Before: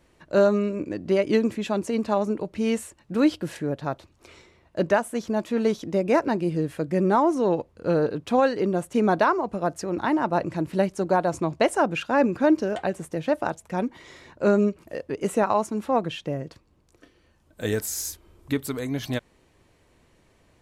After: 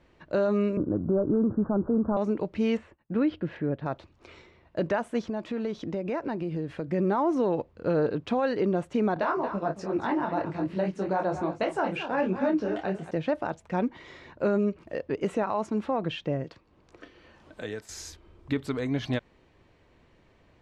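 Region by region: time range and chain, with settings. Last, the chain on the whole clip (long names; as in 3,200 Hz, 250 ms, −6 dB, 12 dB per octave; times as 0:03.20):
0:00.77–0:02.17: variable-slope delta modulation 32 kbit/s + Butterworth low-pass 1,500 Hz 96 dB per octave + low-shelf EQ 250 Hz +11 dB
0:02.77–0:03.86: downward expander −50 dBFS + dynamic equaliser 860 Hz, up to −6 dB, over −39 dBFS, Q 1 + low-pass filter 2,300 Hz
0:05.26–0:06.89: high-shelf EQ 10,000 Hz −5 dB + downward compressor 4 to 1, threshold −28 dBFS
0:09.14–0:13.11: double-tracking delay 26 ms −10 dB + single-tap delay 225 ms −12.5 dB + micro pitch shift up and down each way 42 cents
0:16.44–0:17.89: low-shelf EQ 220 Hz −8.5 dB + multiband upward and downward compressor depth 70%
whole clip: low-pass filter 3,900 Hz 12 dB per octave; brickwall limiter −17.5 dBFS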